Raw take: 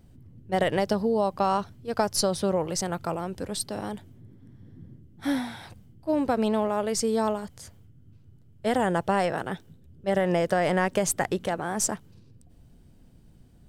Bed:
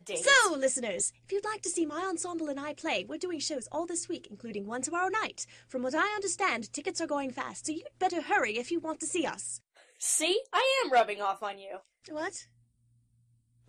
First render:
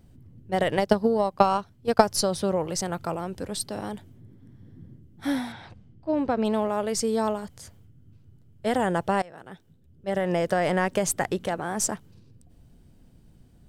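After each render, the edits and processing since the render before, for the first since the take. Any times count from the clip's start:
0:00.75–0:02.04: transient designer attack +9 dB, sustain −8 dB
0:05.52–0:06.45: high-frequency loss of the air 120 metres
0:09.22–0:10.48: fade in, from −23 dB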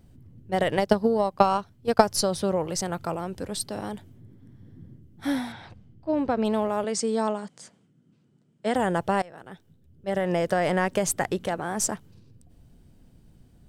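0:06.84–0:08.75: elliptic band-pass filter 170–8,700 Hz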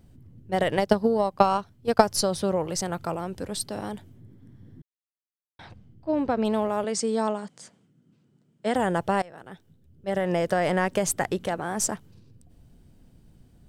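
0:04.82–0:05.59: silence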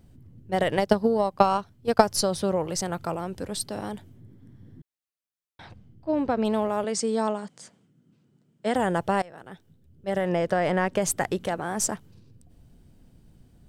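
0:10.29–0:11.02: high-shelf EQ 6,600 Hz −11 dB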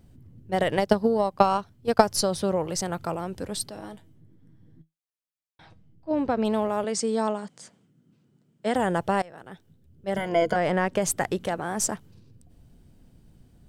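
0:03.70–0:06.11: tuned comb filter 160 Hz, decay 0.17 s, mix 70%
0:10.16–0:10.56: EQ curve with evenly spaced ripples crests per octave 1.8, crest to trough 16 dB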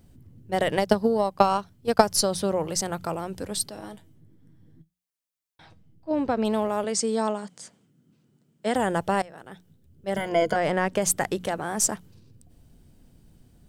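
high-shelf EQ 4,800 Hz +5 dB
mains-hum notches 60/120/180 Hz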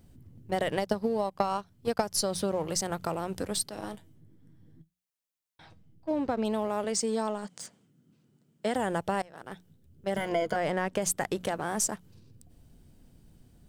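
leveller curve on the samples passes 1
downward compressor 2.5 to 1, threshold −30 dBFS, peak gain reduction 14 dB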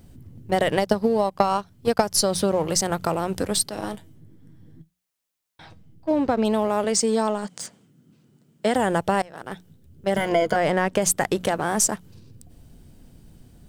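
level +8 dB

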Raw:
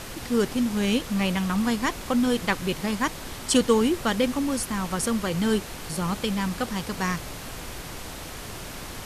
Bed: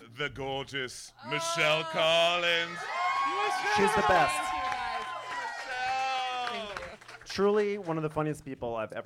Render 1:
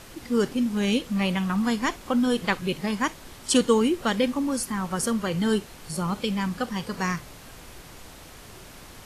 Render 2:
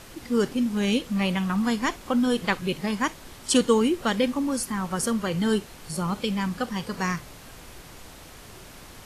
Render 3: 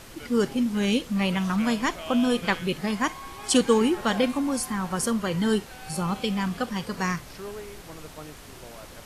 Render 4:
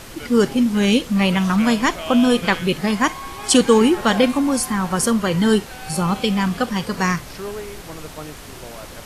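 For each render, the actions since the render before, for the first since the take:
noise reduction from a noise print 8 dB
no processing that can be heard
mix in bed −12.5 dB
level +7.5 dB; brickwall limiter −3 dBFS, peak gain reduction 2.5 dB

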